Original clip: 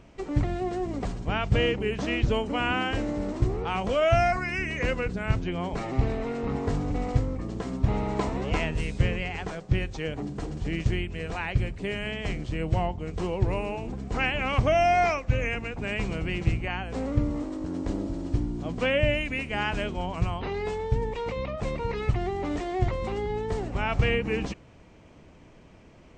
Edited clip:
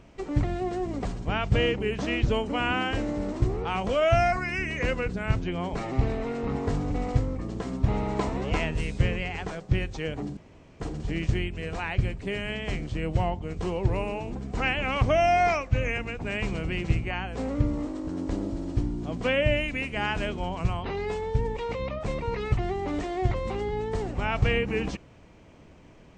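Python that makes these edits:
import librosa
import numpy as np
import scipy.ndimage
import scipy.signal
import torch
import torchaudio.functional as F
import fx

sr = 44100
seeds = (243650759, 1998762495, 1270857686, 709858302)

y = fx.edit(x, sr, fx.insert_room_tone(at_s=10.37, length_s=0.43), tone=tone)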